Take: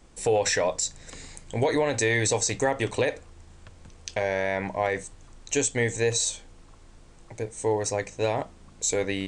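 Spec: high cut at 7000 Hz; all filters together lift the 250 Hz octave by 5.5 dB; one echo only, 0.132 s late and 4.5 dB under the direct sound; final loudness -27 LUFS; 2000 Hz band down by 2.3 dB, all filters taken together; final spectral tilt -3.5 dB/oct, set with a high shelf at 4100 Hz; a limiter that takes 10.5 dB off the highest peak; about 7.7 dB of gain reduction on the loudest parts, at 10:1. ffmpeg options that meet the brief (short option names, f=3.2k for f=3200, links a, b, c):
-af "lowpass=7k,equalizer=f=250:t=o:g=7,equalizer=f=2k:t=o:g=-4.5,highshelf=f=4.1k:g=8.5,acompressor=threshold=-25dB:ratio=10,alimiter=limit=-22dB:level=0:latency=1,aecho=1:1:132:0.596,volume=5dB"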